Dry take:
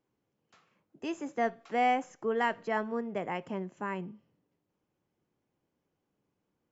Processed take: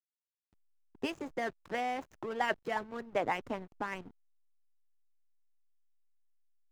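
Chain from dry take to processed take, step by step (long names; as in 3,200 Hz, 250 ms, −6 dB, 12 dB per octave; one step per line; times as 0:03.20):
harmonic and percussive parts rebalanced harmonic −15 dB
slack as between gear wheels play −46 dBFS
level +7 dB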